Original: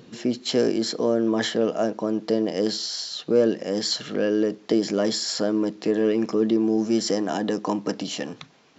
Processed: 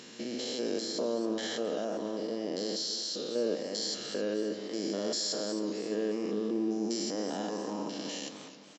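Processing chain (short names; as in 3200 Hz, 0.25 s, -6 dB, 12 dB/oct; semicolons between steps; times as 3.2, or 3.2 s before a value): stepped spectrum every 0.2 s; HPF 600 Hz 6 dB/oct; dynamic EQ 1700 Hz, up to -5 dB, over -44 dBFS, Q 0.71; in parallel at 0 dB: limiter -27 dBFS, peak gain reduction 10.5 dB; on the sum: echo 0.619 s -20 dB; on a send at -12 dB: reverb RT60 1.0 s, pre-delay 3 ms; on the sum: warbling echo 0.27 s, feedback 41%, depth 109 cents, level -13.5 dB; gain -6.5 dB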